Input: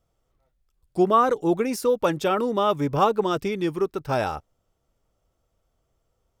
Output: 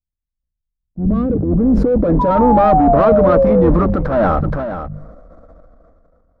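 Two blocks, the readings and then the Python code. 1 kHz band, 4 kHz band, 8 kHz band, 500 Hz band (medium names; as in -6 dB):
+8.0 dB, no reading, under -15 dB, +9.5 dB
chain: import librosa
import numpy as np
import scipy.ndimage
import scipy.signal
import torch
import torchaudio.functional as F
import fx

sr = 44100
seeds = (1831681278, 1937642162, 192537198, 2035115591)

y = fx.octave_divider(x, sr, octaves=2, level_db=-4.0)
y = fx.fixed_phaser(y, sr, hz=580.0, stages=8)
y = fx.leveller(y, sr, passes=5)
y = fx.hum_notches(y, sr, base_hz=50, count=4)
y = fx.spec_paint(y, sr, seeds[0], shape='fall', start_s=2.19, length_s=1.51, low_hz=470.0, high_hz=1000.0, level_db=-16.0)
y = fx.dynamic_eq(y, sr, hz=140.0, q=0.84, threshold_db=-30.0, ratio=4.0, max_db=4)
y = fx.transient(y, sr, attack_db=-8, sustain_db=7)
y = fx.peak_eq(y, sr, hz=4100.0, db=6.5, octaves=0.5)
y = fx.filter_sweep_lowpass(y, sr, from_hz=110.0, to_hz=1000.0, start_s=0.48, end_s=2.6, q=0.91)
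y = y + 10.0 ** (-21.5 / 20.0) * np.pad(y, (int(474 * sr / 1000.0), 0))[:len(y)]
y = fx.sustainer(y, sr, db_per_s=22.0)
y = F.gain(torch.from_numpy(y), 1.0).numpy()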